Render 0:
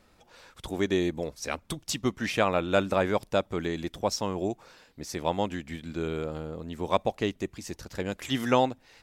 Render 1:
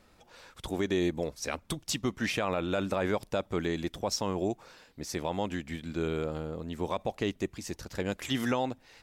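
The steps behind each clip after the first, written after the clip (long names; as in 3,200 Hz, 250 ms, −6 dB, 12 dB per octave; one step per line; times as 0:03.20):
brickwall limiter −18.5 dBFS, peak gain reduction 10.5 dB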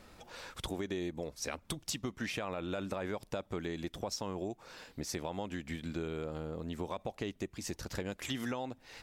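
downward compressor 4 to 1, threshold −42 dBFS, peak gain reduction 14.5 dB
level +5 dB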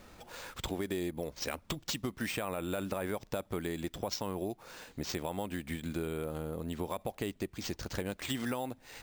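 bad sample-rate conversion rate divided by 4×, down none, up hold
level +2 dB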